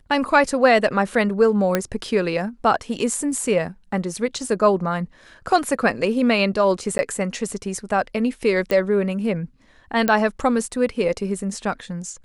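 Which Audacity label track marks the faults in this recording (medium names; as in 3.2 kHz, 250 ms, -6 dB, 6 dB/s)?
1.750000	1.750000	pop -5 dBFS
6.980000	6.990000	dropout 10 ms
8.710000	8.710000	pop -10 dBFS
10.080000	10.080000	pop -6 dBFS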